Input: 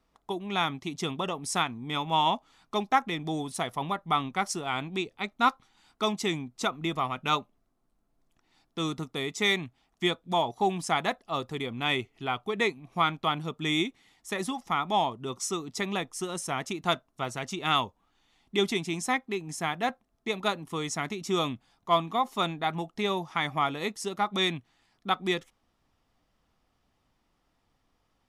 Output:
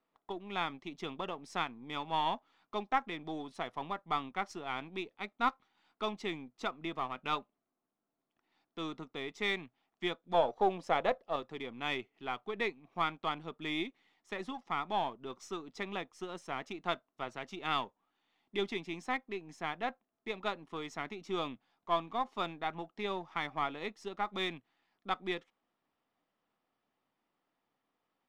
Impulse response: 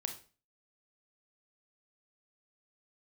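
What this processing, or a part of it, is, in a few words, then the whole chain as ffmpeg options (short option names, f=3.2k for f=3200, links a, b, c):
crystal radio: -filter_complex "[0:a]asettb=1/sr,asplit=3[a][b][c];[a]atrim=end=10.344[d];[b]atrim=start=10.34:end=11.36,asetpts=PTS-STARTPTS,afade=t=in:d=0.004:c=qsin,afade=t=out:st=1.016:d=0.004:c=qsin,equalizer=f=530:t=o:w=0.61:g=14.5[e];[c]atrim=start=11.356[f];[d][e]acrossfade=d=0.004:c1=hsin:c2=qsin[g];[g][f]acrossfade=d=0.004:c1=qsin:c2=hsin,highpass=230,lowpass=3.4k,aeval=exprs='if(lt(val(0),0),0.708*val(0),val(0))':c=same,volume=-6dB"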